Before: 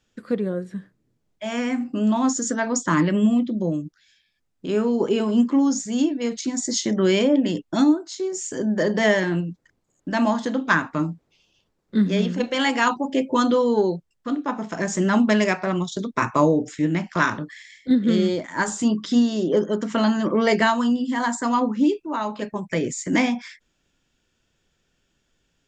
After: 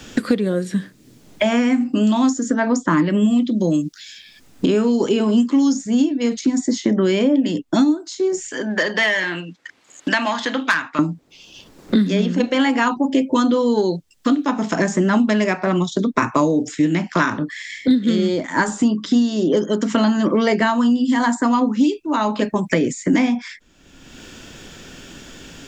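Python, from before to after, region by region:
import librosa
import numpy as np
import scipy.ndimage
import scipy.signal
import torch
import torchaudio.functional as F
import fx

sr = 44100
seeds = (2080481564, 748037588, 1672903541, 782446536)

y = fx.chain(x, sr, fx.bandpass_q(hz=3200.0, q=0.92),
    fx.high_shelf(hz=2800.0, db=9.0),
    fx.transformer_sat(knee_hz=3900.0), at=(8.48, 10.99))
y = fx.peak_eq(y, sr, hz=270.0, db=5.5, octaves=0.49)
y = fx.band_squash(y, sr, depth_pct=100)
y = F.gain(torch.from_numpy(y), 1.0).numpy()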